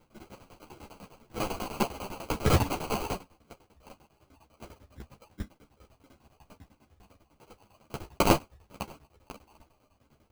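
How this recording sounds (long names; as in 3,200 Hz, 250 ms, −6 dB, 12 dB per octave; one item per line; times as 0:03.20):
phaser sweep stages 6, 1.5 Hz, lowest notch 250–2,100 Hz
aliases and images of a low sample rate 1,800 Hz, jitter 0%
tremolo saw down 10 Hz, depth 100%
a shimmering, thickened sound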